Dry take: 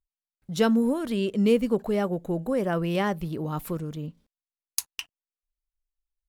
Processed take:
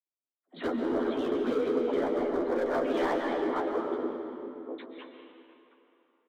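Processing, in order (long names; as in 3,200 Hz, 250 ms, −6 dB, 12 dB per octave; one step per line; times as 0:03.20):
delay that plays each chunk backwards 525 ms, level −9.5 dB
low-pass that shuts in the quiet parts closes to 590 Hz, open at −22 dBFS
linear-prediction vocoder at 8 kHz whisper
brickwall limiter −19 dBFS, peak gain reduction 9.5 dB
elliptic high-pass filter 260 Hz, stop band 50 dB
pitch vibrato 11 Hz 89 cents
all-pass dispersion lows, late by 61 ms, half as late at 840 Hz
hard clipping −29 dBFS, distortion −12 dB
parametric band 2,700 Hz −14.5 dB 0.27 octaves
double-tracking delay 12 ms −4.5 dB
comb and all-pass reverb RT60 2.8 s, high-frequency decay 0.75×, pre-delay 100 ms, DRR 3 dB
level +2 dB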